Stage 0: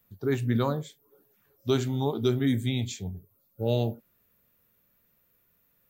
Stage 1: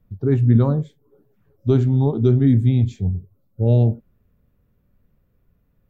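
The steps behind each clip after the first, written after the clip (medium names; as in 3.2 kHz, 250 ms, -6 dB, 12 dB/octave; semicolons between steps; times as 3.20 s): tilt EQ -4.5 dB/octave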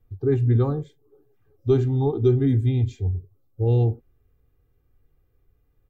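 comb 2.5 ms, depth 89%; trim -5 dB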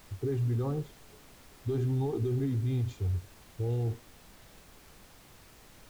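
peak limiter -20.5 dBFS, peak gain reduction 12 dB; added noise pink -51 dBFS; trim -4 dB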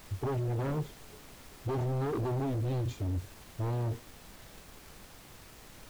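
waveshaping leveller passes 1; wavefolder -28 dBFS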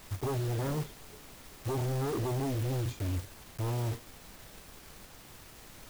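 block-companded coder 3-bit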